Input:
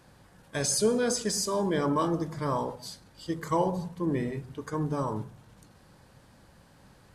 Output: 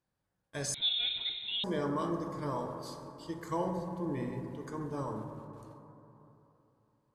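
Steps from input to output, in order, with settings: gate with hold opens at -44 dBFS; plate-style reverb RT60 3.3 s, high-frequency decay 0.25×, DRR 4.5 dB; 0.74–1.64 inverted band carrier 3900 Hz; gain -8 dB

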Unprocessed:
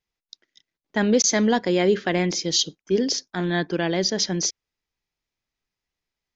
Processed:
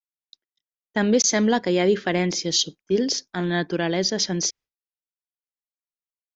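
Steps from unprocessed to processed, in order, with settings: expander -41 dBFS

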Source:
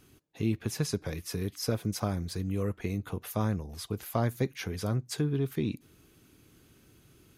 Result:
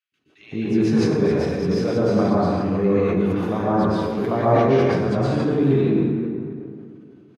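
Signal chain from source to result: gate with hold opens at -47 dBFS; BPF 180–2500 Hz; bell 430 Hz +3 dB 1.8 oct; three bands offset in time highs, lows, mids 0.12/0.16 s, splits 370/1700 Hz; plate-style reverb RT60 1.9 s, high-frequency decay 0.6×, pre-delay 0.105 s, DRR -8.5 dB; sustainer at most 24 dB/s; gain +4.5 dB

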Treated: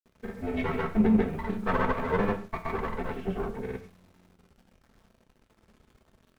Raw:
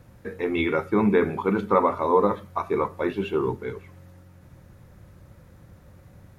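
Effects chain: minimum comb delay 4.5 ms; gate -41 dBFS, range -11 dB; tone controls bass +7 dB, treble -13 dB; bit-crush 9-bit; grains, pitch spread up and down by 0 st; non-linear reverb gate 0.17 s falling, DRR 7 dB; gain -5 dB

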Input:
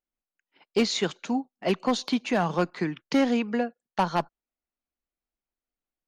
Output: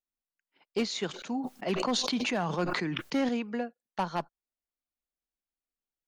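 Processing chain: 1.07–3.29 sustainer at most 25 dB/s; gain -6.5 dB

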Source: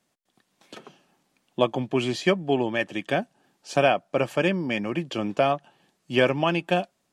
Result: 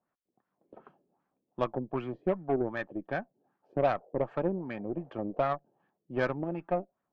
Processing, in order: 3.82–5.44 band noise 400–770 Hz -52 dBFS; LFO low-pass sine 2.6 Hz 380–1500 Hz; added harmonics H 3 -21 dB, 8 -27 dB, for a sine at -2.5 dBFS; gain -8.5 dB

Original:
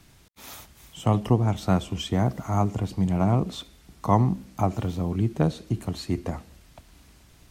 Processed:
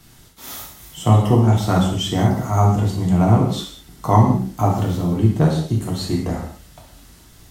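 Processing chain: high shelf 7800 Hz +6 dB; notch 2400 Hz, Q 11; non-linear reverb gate 0.23 s falling, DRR -2.5 dB; gain +2.5 dB

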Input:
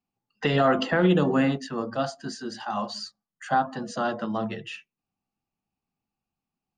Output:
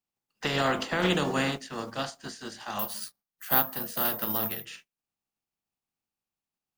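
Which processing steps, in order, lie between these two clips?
spectral contrast lowered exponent 0.53; 2.79–4.65 careless resampling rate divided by 3×, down filtered, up zero stuff; gain -5.5 dB

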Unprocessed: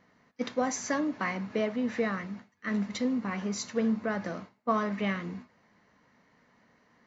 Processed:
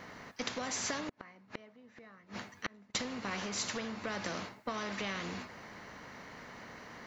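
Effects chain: 1.09–2.95 flipped gate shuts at -29 dBFS, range -40 dB; compressor 4:1, threshold -36 dBFS, peak gain reduction 12 dB; spectral compressor 2:1; gain +3 dB

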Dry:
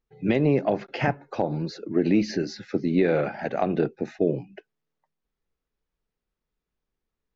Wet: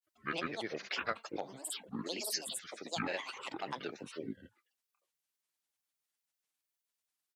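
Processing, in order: differentiator; grains, pitch spread up and down by 12 st; gain +7.5 dB

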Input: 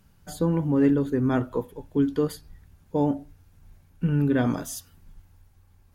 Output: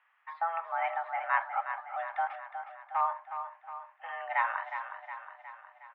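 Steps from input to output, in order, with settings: 2.27–3.01 backlash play -33.5 dBFS; on a send: feedback echo 0.363 s, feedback 56%, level -9 dB; on the sum: mistuned SSB +330 Hz 570–2300 Hz; gain +3 dB

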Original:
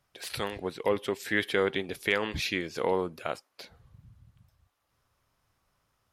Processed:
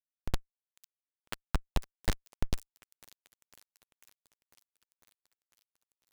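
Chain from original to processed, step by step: level-crossing sampler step -32.5 dBFS; weighting filter D; treble ducked by the level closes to 1900 Hz, closed at -19 dBFS; transient shaper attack -1 dB, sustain +4 dB; compressor 3:1, threshold -23 dBFS, peak gain reduction 5.5 dB; Schmitt trigger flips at -15.5 dBFS; thin delay 0.499 s, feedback 70%, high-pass 5400 Hz, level -9 dB; noise-modulated delay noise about 1400 Hz, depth 0.1 ms; gain +10.5 dB

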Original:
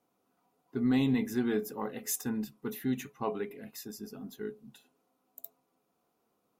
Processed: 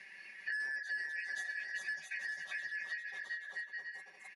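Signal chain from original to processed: four-band scrambler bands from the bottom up 3142; HPF 100 Hz 12 dB/oct; bell 8000 Hz -14 dB 0.87 oct; notch 7600 Hz, Q 16; comb 5.2 ms, depth 81%; dynamic EQ 5900 Hz, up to +4 dB, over -51 dBFS, Q 1.6; compressor 3:1, threshold -30 dBFS, peak gain reduction 8.5 dB; plain phase-vocoder stretch 0.66×; hard clip -28.5 dBFS, distortion -21 dB; on a send: bouncing-ball echo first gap 0.4 s, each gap 0.65×, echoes 5; on the sum: downsampling 22050 Hz; three-band squash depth 100%; gain -5 dB

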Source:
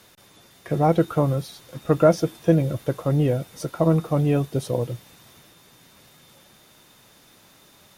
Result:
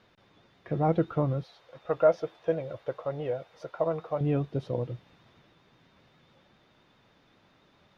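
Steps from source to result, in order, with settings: 1.43–4.21 resonant low shelf 380 Hz -11.5 dB, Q 1.5; vibrato 7.5 Hz 42 cents; air absorption 250 m; gain -6 dB

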